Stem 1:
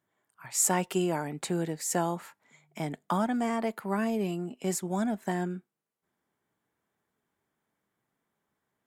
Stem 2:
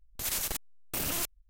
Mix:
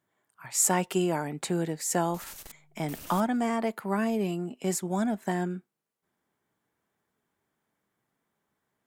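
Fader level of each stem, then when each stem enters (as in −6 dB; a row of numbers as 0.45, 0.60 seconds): +1.5, −12.5 decibels; 0.00, 1.95 seconds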